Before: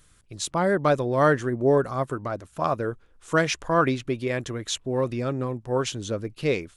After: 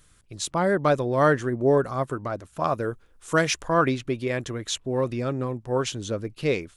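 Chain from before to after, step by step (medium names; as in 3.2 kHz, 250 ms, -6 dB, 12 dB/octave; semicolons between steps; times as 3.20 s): 2.73–3.65 s: treble shelf 7.9 kHz +9 dB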